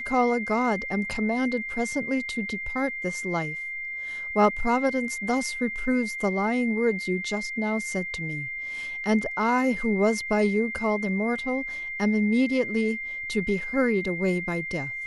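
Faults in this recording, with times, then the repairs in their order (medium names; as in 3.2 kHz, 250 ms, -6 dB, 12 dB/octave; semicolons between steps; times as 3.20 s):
whine 2.1 kHz -31 dBFS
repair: band-stop 2.1 kHz, Q 30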